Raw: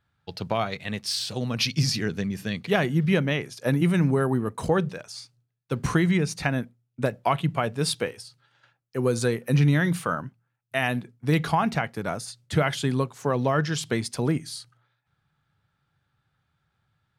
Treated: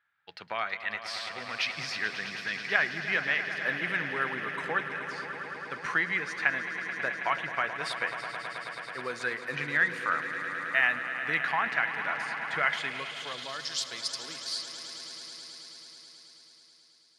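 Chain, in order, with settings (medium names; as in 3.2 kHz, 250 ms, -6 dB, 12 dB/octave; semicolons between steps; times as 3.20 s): echo with a slow build-up 108 ms, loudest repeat 5, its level -13 dB; band-pass sweep 1.8 kHz -> 4.7 kHz, 12.66–13.64 s; trim +5 dB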